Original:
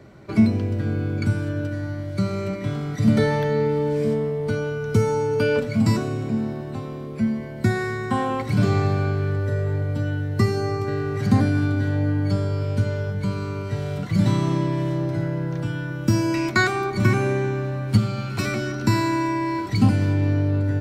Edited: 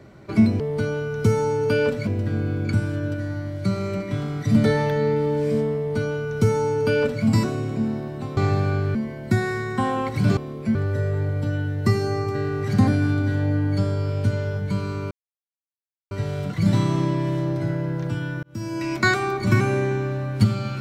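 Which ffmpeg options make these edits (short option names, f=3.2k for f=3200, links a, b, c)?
-filter_complex "[0:a]asplit=9[a][b][c][d][e][f][g][h][i];[a]atrim=end=0.602[j];[b]atrim=start=4.298:end=5.772[k];[c]atrim=start=0.598:end=6.902[l];[d]atrim=start=8.698:end=9.282[m];[e]atrim=start=7.278:end=8.702[n];[f]atrim=start=6.898:end=7.282[o];[g]atrim=start=9.278:end=13.64,asetpts=PTS-STARTPTS,afade=t=out:st=4.358:d=0.004:c=hsin,apad=pad_dur=1[p];[h]atrim=start=13.64:end=15.96,asetpts=PTS-STARTPTS,afade=t=in:d=0.004:c=hsin,afade=t=out:st=2.316:d=0.004:c=hsin[q];[i]atrim=start=15.96,asetpts=PTS-STARTPTS,afade=t=in:d=0.64[r];[j][k]acrossfade=d=0.004:c1=hsin:c2=hsin[s];[s][l]acrossfade=d=0.004:c1=hsin:c2=hsin[t];[t][m]acrossfade=d=0.004:c1=hsin:c2=hsin[u];[u][n]acrossfade=d=0.004:c1=hsin:c2=hsin[v];[v][o]acrossfade=d=0.004:c1=hsin:c2=hsin[w];[p][q][r]concat=n=3:v=0:a=1[x];[w][x]acrossfade=d=0.004:c1=hsin:c2=hsin"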